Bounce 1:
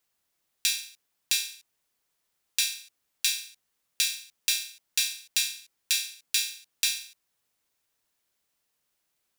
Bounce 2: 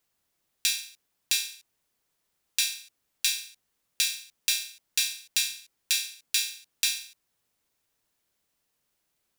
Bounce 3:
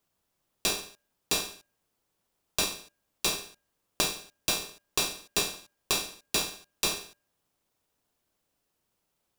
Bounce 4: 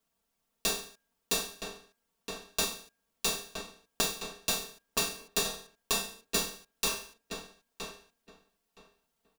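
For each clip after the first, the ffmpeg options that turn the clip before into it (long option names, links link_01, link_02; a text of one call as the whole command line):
ffmpeg -i in.wav -af "lowshelf=frequency=500:gain=5" out.wav
ffmpeg -i in.wav -filter_complex "[0:a]bandreject=frequency=404.6:width_type=h:width=4,bandreject=frequency=809.2:width_type=h:width=4,bandreject=frequency=1213.8:width_type=h:width=4,bandreject=frequency=1618.4:width_type=h:width=4,bandreject=frequency=2023:width_type=h:width=4,bandreject=frequency=2427.6:width_type=h:width=4,bandreject=frequency=2832.2:width_type=h:width=4,asplit=2[link_01][link_02];[link_02]acrusher=samples=20:mix=1:aa=0.000001,volume=-5.5dB[link_03];[link_01][link_03]amix=inputs=2:normalize=0,volume=-3dB" out.wav
ffmpeg -i in.wav -filter_complex "[0:a]aecho=1:1:4.4:0.96,asplit=2[link_01][link_02];[link_02]adelay=968,lowpass=frequency=2600:poles=1,volume=-6dB,asplit=2[link_03][link_04];[link_04]adelay=968,lowpass=frequency=2600:poles=1,volume=0.18,asplit=2[link_05][link_06];[link_06]adelay=968,lowpass=frequency=2600:poles=1,volume=0.18[link_07];[link_03][link_05][link_07]amix=inputs=3:normalize=0[link_08];[link_01][link_08]amix=inputs=2:normalize=0,volume=-4.5dB" out.wav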